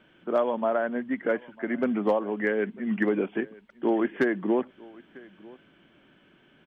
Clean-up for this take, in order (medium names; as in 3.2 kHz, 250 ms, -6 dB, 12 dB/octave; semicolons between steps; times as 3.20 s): clip repair -14.5 dBFS; inverse comb 949 ms -23 dB